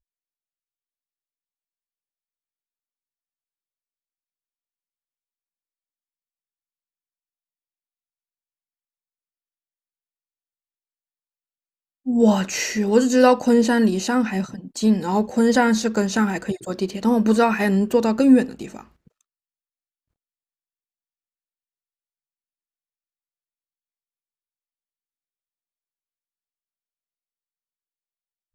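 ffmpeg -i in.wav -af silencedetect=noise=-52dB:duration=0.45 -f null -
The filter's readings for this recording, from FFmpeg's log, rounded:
silence_start: 0.00
silence_end: 12.05 | silence_duration: 12.05
silence_start: 19.21
silence_end: 28.54 | silence_duration: 9.33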